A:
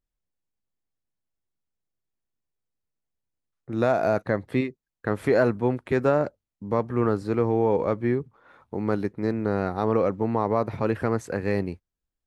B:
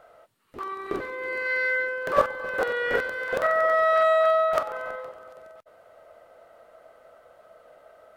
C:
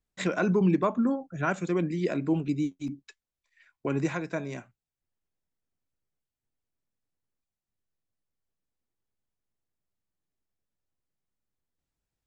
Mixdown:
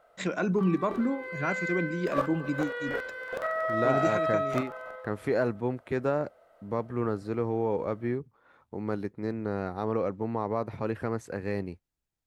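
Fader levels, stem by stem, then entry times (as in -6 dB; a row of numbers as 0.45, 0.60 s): -6.5, -8.0, -2.5 dB; 0.00, 0.00, 0.00 s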